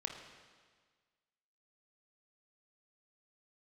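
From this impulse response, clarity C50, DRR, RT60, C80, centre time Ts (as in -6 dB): 4.5 dB, 3.0 dB, 1.6 s, 6.5 dB, 44 ms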